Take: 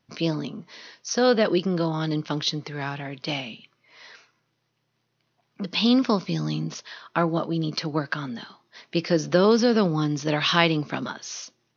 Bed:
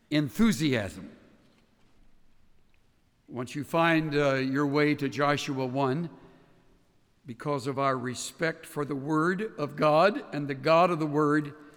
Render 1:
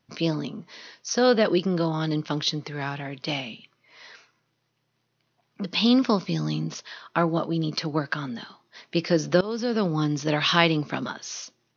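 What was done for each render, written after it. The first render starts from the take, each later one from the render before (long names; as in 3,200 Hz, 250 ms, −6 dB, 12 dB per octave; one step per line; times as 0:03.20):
0:09.41–0:10.03: fade in, from −19 dB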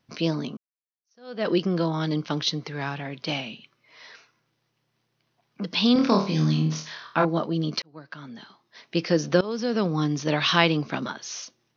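0:00.57–0:01.48: fade in exponential
0:05.93–0:07.25: flutter between parallel walls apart 4.4 metres, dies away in 0.39 s
0:07.82–0:09.02: fade in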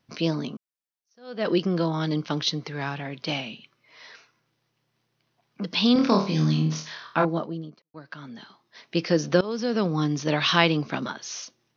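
0:07.13–0:07.94: fade out and dull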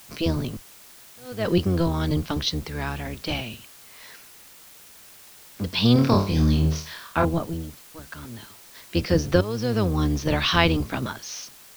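sub-octave generator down 1 octave, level 0 dB
bit-depth reduction 8 bits, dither triangular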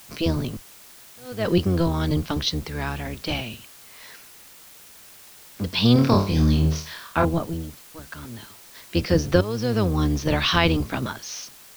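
level +1 dB
brickwall limiter −3 dBFS, peak gain reduction 3 dB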